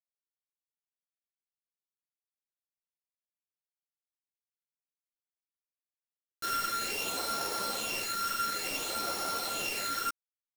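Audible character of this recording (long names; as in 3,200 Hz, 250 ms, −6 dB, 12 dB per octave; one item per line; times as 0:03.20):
a buzz of ramps at a fixed pitch in blocks of 32 samples
phaser sweep stages 12, 0.57 Hz, lowest notch 780–2,900 Hz
a quantiser's noise floor 6 bits, dither none
a shimmering, thickened sound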